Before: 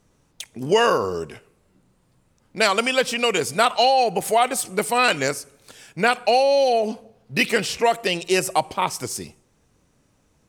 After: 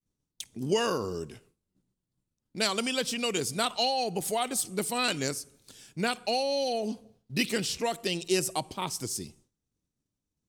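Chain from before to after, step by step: band shelf 1100 Hz -8.5 dB 2.8 oct; expander -51 dBFS; gain -4 dB

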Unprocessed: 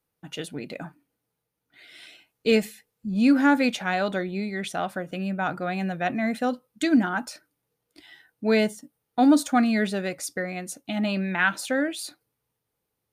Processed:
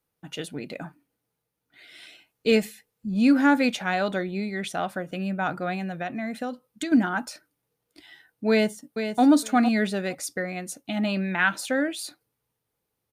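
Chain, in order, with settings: 5.74–6.92 compressor 6:1, threshold -28 dBFS, peak gain reduction 8 dB; 8.5–9.22 echo throw 0.46 s, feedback 15%, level -8 dB

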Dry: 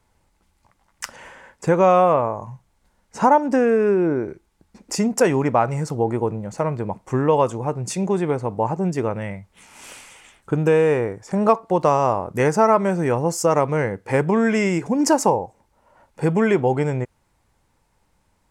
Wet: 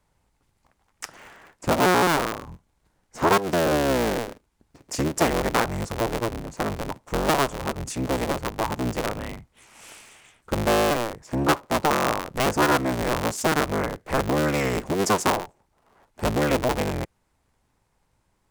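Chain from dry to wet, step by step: cycle switcher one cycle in 3, inverted; gain -4.5 dB

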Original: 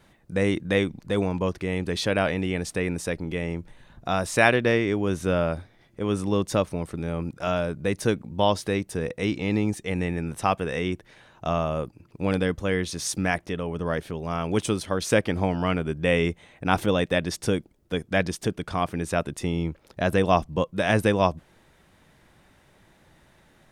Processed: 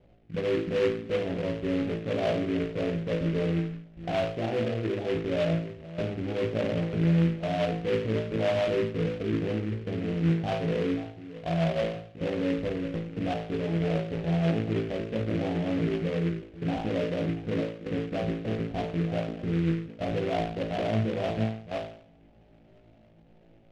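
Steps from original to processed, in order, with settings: reverse delay 0.316 s, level -10 dB; steep low-pass 750 Hz 48 dB/oct; notches 50/100/150/200/250/300/350/400/450 Hz; level quantiser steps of 16 dB; limiter -26.5 dBFS, peak gain reduction 5.5 dB; flutter echo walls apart 3.1 m, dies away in 0.55 s; noise-modulated delay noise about 1900 Hz, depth 0.069 ms; gain +2.5 dB

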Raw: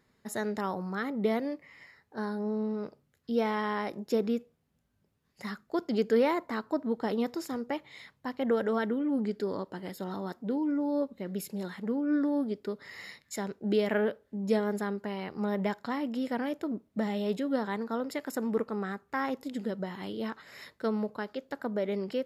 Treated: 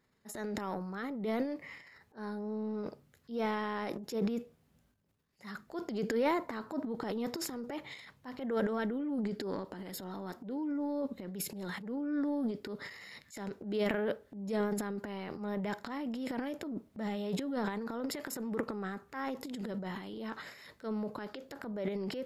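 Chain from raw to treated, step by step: transient shaper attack -7 dB, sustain +12 dB; gain -5.5 dB

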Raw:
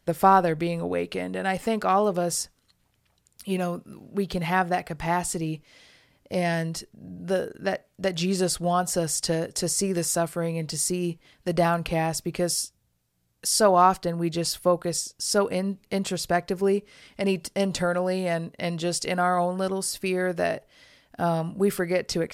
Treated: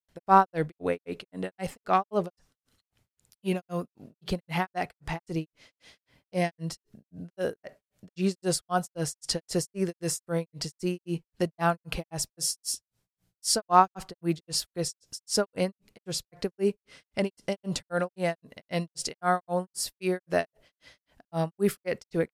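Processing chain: grains 0.199 s, grains 3.8/s, pitch spread up and down by 0 st; gain +1 dB

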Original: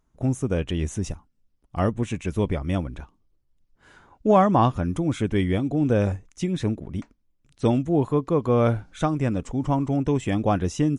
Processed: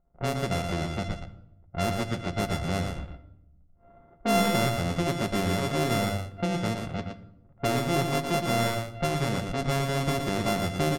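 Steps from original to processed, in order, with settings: sample sorter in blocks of 64 samples; low-pass opened by the level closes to 1400 Hz, open at -20.5 dBFS; in parallel at +0.5 dB: compressor 6:1, threshold -29 dBFS, peak gain reduction 15.5 dB; on the sum: low-pass opened by the level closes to 1300 Hz, open at -15 dBFS; soft clip -9.5 dBFS, distortion -19 dB; on a send: echo 0.117 s -6 dB; on the sum: shoebox room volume 3000 m³, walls furnished, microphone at 0.98 m; gain -7 dB

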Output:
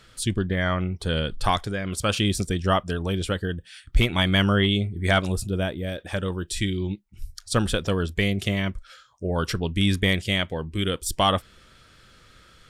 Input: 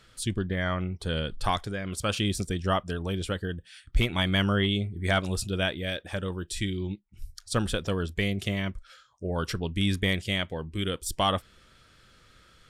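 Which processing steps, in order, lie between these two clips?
5.32–5.99 bell 3000 Hz -10.5 dB 2.8 oct; gain +4.5 dB

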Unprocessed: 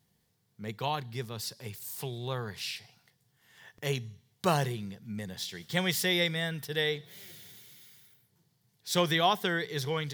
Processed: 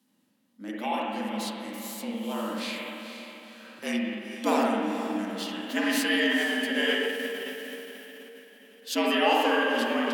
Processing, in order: spring tank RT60 1.8 s, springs 44/58 ms, chirp 65 ms, DRR -3 dB; frequency shift +100 Hz; on a send: diffused feedback echo 0.479 s, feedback 44%, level -9 dB; on the sum: formant shift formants -3 st

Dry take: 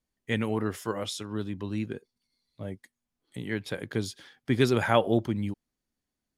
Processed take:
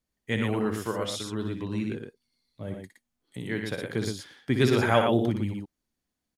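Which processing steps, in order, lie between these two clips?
loudspeakers at several distances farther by 21 m -7 dB, 40 m -5 dB

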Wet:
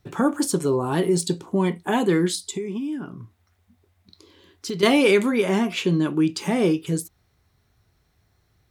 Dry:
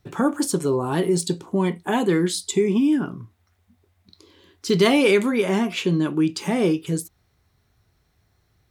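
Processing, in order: 2.35–4.83 compressor 2.5:1, threshold -31 dBFS, peak gain reduction 11.5 dB

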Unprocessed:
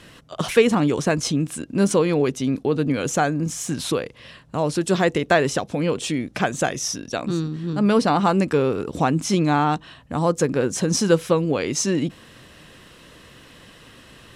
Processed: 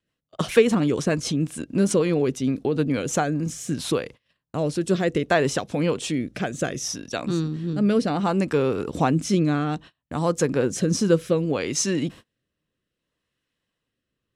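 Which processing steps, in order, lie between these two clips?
rotary speaker horn 6.7 Hz, later 0.65 Hz, at 2.81; gate -39 dBFS, range -32 dB

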